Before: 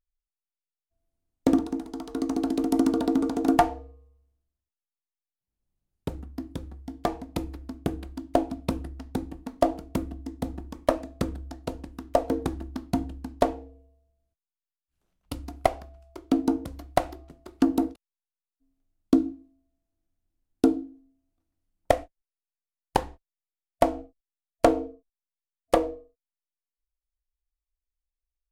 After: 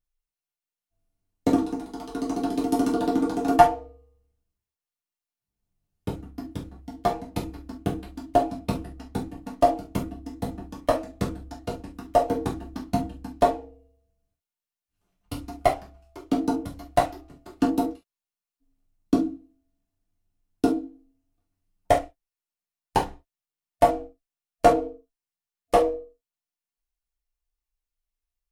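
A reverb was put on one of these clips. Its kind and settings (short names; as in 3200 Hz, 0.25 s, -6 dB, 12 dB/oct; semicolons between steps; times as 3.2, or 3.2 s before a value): non-linear reverb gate 90 ms falling, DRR -4.5 dB; gain -3.5 dB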